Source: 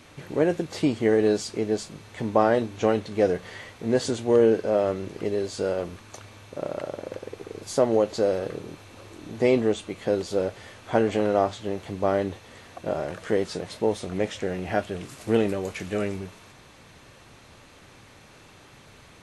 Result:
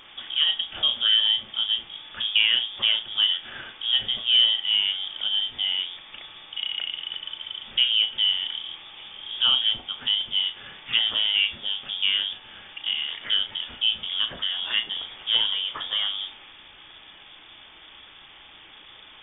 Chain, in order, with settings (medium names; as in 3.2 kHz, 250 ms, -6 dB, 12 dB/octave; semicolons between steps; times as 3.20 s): in parallel at -2 dB: compression, threshold -31 dBFS, peak gain reduction 15.5 dB; on the sum: frequency inversion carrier 3.5 kHz; vibrato 2.6 Hz 5.1 cents; flutter echo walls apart 6 m, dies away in 0.2 s; trim -2.5 dB